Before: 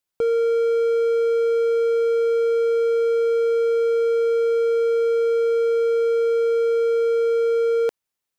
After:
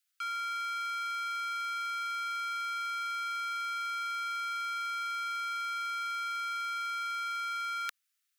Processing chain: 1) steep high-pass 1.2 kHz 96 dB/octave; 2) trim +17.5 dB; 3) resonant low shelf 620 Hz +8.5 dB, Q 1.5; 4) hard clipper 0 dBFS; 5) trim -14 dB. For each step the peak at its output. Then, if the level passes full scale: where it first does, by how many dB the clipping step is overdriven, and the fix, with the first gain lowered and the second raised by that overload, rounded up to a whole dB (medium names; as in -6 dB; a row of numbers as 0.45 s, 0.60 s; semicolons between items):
-22.0 dBFS, -4.5 dBFS, -5.0 dBFS, -5.0 dBFS, -19.0 dBFS; nothing clips